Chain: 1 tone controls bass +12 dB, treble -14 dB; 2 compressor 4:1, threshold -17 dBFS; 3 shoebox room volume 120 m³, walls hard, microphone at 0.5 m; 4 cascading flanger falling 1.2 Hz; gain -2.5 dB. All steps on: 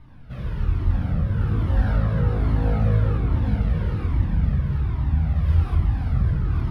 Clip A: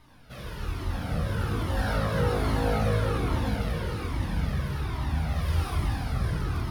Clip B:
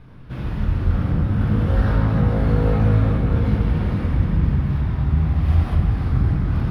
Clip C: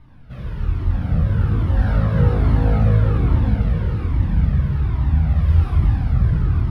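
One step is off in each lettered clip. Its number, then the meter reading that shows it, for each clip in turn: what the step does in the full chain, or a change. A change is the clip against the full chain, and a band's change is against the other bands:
1, 125 Hz band -10.5 dB; 4, 125 Hz band -2.0 dB; 2, mean gain reduction 3.0 dB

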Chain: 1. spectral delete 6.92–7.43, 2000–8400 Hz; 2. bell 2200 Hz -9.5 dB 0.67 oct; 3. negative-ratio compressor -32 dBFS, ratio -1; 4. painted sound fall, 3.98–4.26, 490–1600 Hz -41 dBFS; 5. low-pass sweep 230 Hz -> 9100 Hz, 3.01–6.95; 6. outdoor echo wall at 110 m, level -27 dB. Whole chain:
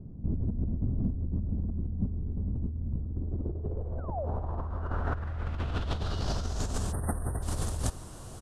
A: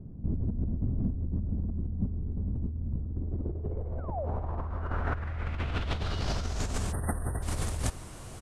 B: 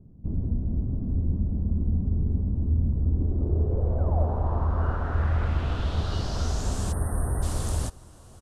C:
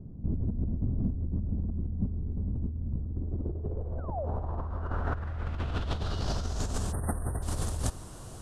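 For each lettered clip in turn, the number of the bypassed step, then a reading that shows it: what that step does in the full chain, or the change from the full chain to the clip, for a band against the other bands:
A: 2, 2 kHz band +4.0 dB; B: 3, crest factor change -4.5 dB; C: 6, echo-to-direct -29.0 dB to none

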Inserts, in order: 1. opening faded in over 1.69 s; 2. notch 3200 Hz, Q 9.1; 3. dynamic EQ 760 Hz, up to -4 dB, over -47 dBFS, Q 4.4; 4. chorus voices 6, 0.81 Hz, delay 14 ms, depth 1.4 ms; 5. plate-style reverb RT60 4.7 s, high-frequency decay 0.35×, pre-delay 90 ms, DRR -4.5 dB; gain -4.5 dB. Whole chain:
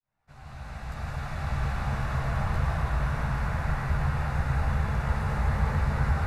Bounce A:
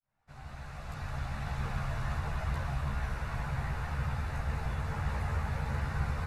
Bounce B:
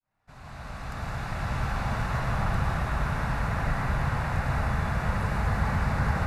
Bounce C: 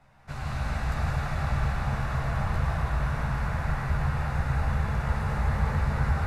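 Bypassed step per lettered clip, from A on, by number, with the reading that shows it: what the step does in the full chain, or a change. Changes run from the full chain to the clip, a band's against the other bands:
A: 5, 4 kHz band +3.0 dB; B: 4, 125 Hz band -3.5 dB; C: 1, momentary loudness spread change -6 LU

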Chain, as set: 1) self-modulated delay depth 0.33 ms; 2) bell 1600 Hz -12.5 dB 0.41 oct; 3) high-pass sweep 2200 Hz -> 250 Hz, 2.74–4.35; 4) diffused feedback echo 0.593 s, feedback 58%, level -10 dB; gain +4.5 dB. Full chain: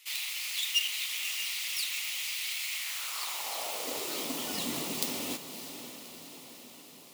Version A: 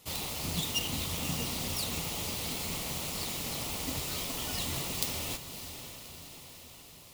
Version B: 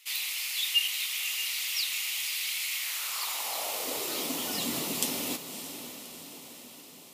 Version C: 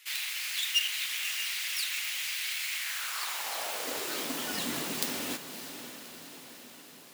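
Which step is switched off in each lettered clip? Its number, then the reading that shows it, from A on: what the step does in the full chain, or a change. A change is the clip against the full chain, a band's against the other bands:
3, 125 Hz band +15.0 dB; 1, loudness change +2.5 LU; 2, 2 kHz band +2.5 dB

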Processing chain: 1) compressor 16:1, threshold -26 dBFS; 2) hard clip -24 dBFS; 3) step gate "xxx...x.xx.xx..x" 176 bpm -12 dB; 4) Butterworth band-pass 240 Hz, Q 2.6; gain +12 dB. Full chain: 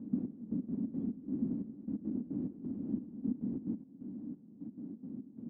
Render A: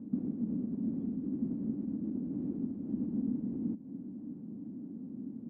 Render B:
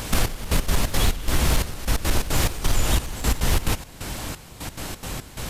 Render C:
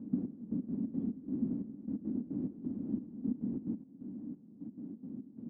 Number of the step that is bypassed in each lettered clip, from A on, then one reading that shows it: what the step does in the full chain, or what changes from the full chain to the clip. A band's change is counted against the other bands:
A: 3, crest factor change -2.5 dB; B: 4, crest factor change -8.5 dB; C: 2, distortion -21 dB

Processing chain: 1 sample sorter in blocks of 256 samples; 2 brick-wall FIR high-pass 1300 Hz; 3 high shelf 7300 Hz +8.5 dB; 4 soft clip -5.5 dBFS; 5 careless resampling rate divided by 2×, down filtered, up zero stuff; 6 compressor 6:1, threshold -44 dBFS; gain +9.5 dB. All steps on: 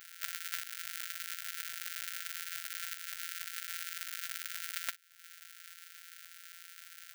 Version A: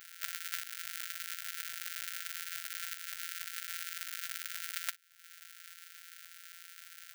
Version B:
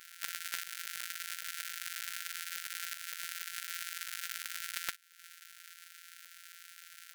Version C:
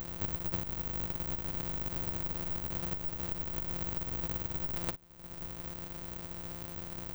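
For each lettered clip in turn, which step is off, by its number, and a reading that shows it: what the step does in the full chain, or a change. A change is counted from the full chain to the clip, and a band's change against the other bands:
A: 4, distortion -13 dB; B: 5, momentary loudness spread change +1 LU; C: 2, 1 kHz band +10.0 dB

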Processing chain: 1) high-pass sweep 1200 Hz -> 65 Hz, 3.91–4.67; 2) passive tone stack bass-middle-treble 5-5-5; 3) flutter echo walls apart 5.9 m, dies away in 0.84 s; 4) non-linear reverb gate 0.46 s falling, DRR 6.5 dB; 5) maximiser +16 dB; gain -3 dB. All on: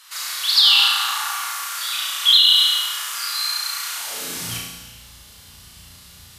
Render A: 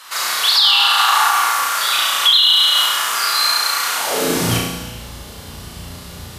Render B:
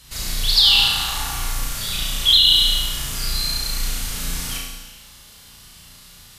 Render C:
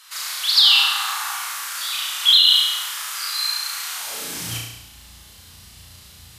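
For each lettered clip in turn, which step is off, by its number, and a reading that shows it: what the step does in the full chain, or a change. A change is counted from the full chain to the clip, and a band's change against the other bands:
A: 2, 125 Hz band +9.0 dB; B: 1, 125 Hz band +13.0 dB; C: 4, 125 Hz band +3.5 dB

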